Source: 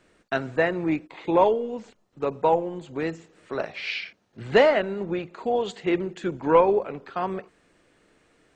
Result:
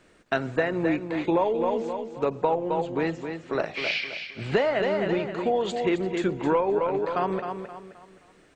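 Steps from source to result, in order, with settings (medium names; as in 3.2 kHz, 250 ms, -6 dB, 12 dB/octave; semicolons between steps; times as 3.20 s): 2.35–3.53 s: low-pass 6 kHz 12 dB/octave; on a send: feedback delay 263 ms, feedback 36%, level -8.5 dB; on the sum: compression 6:1, threshold -23 dBFS, peak gain reduction 11 dB; trim +3 dB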